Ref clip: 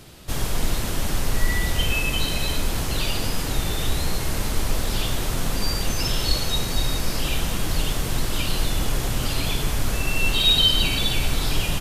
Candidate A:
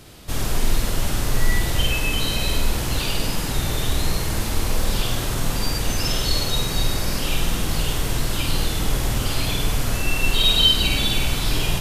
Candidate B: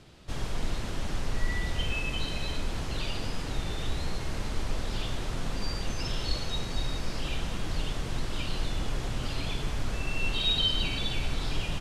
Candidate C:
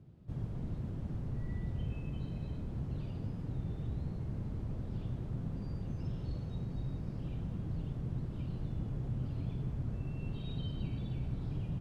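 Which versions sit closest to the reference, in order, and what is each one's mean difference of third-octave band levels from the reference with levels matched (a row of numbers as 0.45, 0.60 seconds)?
A, B, C; 1.0, 3.5, 16.0 decibels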